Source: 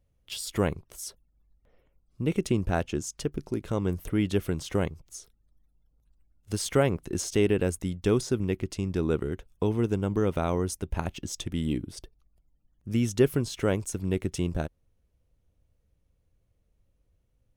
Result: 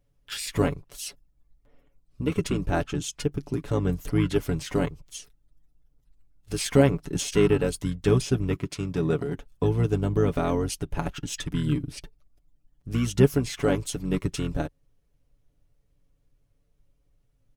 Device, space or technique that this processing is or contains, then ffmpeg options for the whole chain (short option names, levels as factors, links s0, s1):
octave pedal: -filter_complex "[0:a]asplit=2[s0][s1];[s1]asetrate=22050,aresample=44100,atempo=2,volume=0.631[s2];[s0][s2]amix=inputs=2:normalize=0,asettb=1/sr,asplit=3[s3][s4][s5];[s3]atrim=end=8.574[s6];[s4]atrim=start=8.57:end=9.34,asetpts=PTS-STARTPTS,afade=t=in:d=0.004:c=qsin,afade=t=out:st=0.766:d=0.004:c=qsin,highpass=f=130:p=1[s7];[s5]atrim=start=9.336[s8];[s6][s7]acrossfade=d=0.004:c1=hsin:c2=qsin[s9];[s9][s8]acrossfade=d=0.004:c1=qsin:c2=hsin,aecho=1:1:7:0.61"